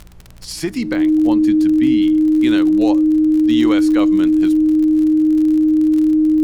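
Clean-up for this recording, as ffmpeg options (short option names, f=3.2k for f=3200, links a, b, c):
-af "adeclick=t=4,bandreject=f=59.3:t=h:w=4,bandreject=f=118.6:t=h:w=4,bandreject=f=177.9:t=h:w=4,bandreject=f=310:w=30,agate=range=-21dB:threshold=-20dB"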